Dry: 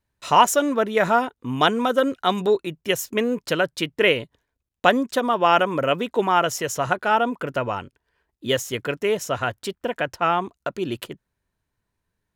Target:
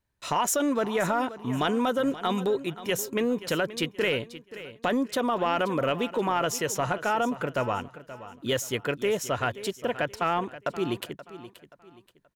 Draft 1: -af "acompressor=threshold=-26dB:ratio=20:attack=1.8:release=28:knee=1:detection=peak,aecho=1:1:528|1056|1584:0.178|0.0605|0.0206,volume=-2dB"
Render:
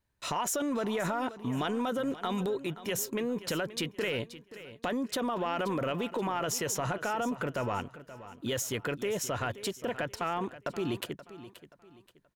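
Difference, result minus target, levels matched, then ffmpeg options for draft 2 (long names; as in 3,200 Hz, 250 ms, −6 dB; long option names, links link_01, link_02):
downward compressor: peak gain reduction +6.5 dB
-af "acompressor=threshold=-19dB:ratio=20:attack=1.8:release=28:knee=1:detection=peak,aecho=1:1:528|1056|1584:0.178|0.0605|0.0206,volume=-2dB"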